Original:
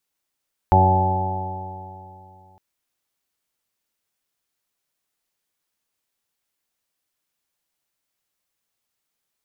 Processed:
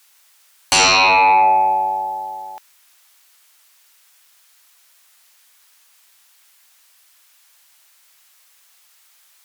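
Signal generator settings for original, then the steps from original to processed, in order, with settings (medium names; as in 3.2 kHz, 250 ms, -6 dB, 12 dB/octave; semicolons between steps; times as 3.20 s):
stretched partials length 1.86 s, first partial 92.8 Hz, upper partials -7/-17/-8.5/-20/-9/-13.5/-4/1 dB, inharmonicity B 0.00081, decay 2.76 s, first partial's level -14.5 dB
high-pass 1 kHz 12 dB/octave; in parallel at +2.5 dB: sine folder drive 19 dB, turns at -12.5 dBFS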